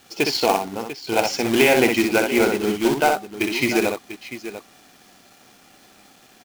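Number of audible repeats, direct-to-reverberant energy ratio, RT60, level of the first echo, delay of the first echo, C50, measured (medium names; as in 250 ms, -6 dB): 2, no reverb, no reverb, -5.0 dB, 62 ms, no reverb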